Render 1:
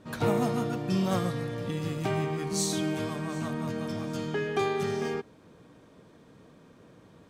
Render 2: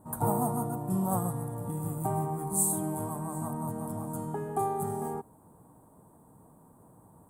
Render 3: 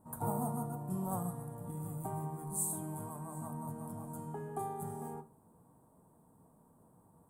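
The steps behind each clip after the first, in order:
FFT filter 120 Hz 0 dB, 530 Hz -7 dB, 870 Hz +7 dB, 1.6 kHz -15 dB, 2.4 kHz -26 dB, 5.7 kHz -24 dB, 8.5 kHz +11 dB, 13 kHz +14 dB
reverberation, pre-delay 4 ms, DRR 9.5 dB; trim -8.5 dB

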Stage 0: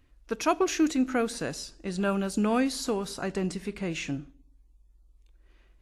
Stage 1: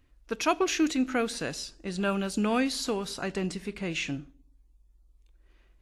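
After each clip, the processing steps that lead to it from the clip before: dynamic bell 3.1 kHz, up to +6 dB, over -47 dBFS, Q 0.84; trim -1.5 dB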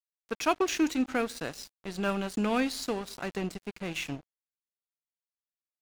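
crossover distortion -39 dBFS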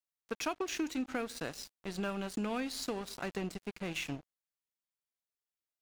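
compression 5:1, threshold -30 dBFS, peak gain reduction 10 dB; trim -2 dB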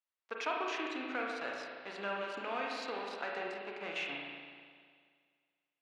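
band-pass 590–3200 Hz; spring tank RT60 1.9 s, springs 35/49 ms, chirp 25 ms, DRR -1.5 dB; trim +1 dB

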